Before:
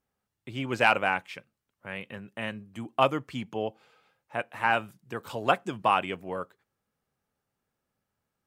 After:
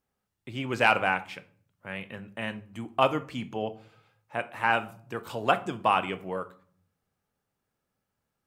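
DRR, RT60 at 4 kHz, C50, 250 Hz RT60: 11.5 dB, 0.30 s, 17.0 dB, 0.90 s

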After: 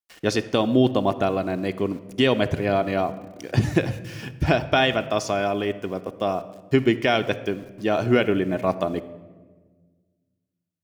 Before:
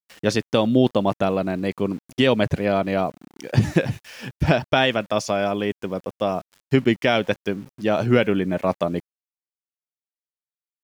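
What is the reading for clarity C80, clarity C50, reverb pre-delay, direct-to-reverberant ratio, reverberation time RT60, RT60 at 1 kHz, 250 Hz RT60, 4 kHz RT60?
16.5 dB, 14.5 dB, 3 ms, 9.0 dB, 1.4 s, 1.2 s, 2.0 s, 0.90 s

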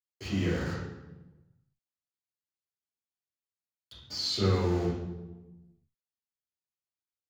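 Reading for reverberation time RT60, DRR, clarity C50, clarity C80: 1.1 s, −11.0 dB, 1.0 dB, 4.5 dB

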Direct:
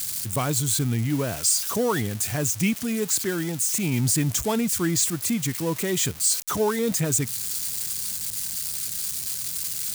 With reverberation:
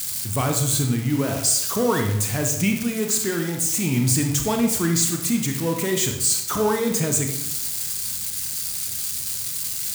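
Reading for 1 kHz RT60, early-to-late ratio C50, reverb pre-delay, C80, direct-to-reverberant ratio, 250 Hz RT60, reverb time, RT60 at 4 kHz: 0.85 s, 6.0 dB, 27 ms, 8.5 dB, 3.0 dB, 1.0 s, 0.90 s, 0.65 s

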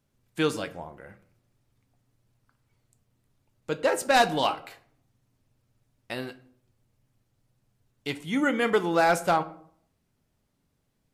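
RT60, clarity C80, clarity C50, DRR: 0.60 s, 19.5 dB, 16.5 dB, 11.0 dB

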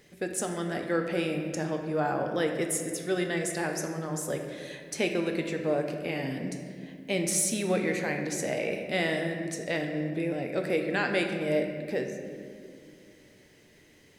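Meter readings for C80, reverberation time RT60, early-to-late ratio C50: 6.5 dB, 2.3 s, 5.5 dB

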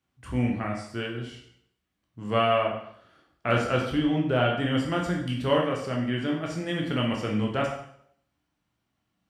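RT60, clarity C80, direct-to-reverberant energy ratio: 0.65 s, 8.0 dB, −1.0 dB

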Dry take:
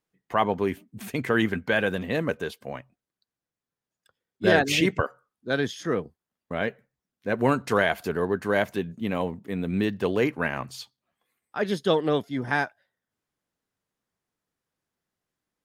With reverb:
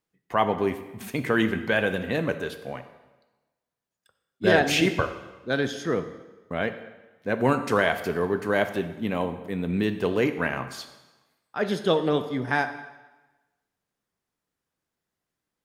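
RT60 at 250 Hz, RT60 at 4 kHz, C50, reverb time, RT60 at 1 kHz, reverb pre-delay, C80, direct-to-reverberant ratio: 1.1 s, 1.0 s, 11.0 dB, 1.2 s, 1.2 s, 11 ms, 13.0 dB, 9.0 dB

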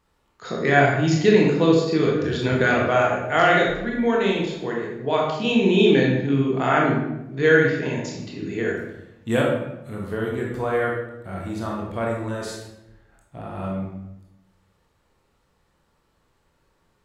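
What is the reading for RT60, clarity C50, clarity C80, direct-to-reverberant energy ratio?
0.90 s, 1.5 dB, 5.0 dB, −2.5 dB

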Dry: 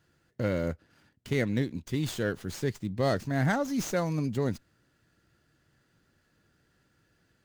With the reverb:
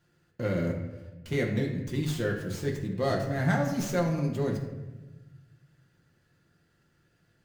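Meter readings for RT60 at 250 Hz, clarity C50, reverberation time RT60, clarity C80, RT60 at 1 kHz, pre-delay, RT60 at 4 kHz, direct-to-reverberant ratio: 1.7 s, 5.5 dB, 1.2 s, 8.0 dB, 1.0 s, 6 ms, 0.70 s, −0.5 dB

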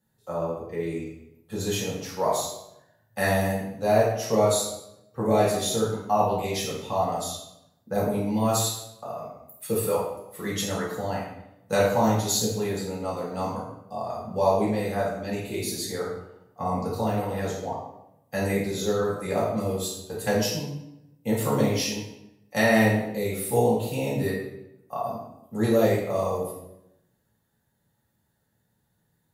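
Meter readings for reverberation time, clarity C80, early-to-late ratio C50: 0.85 s, 5.5 dB, 2.0 dB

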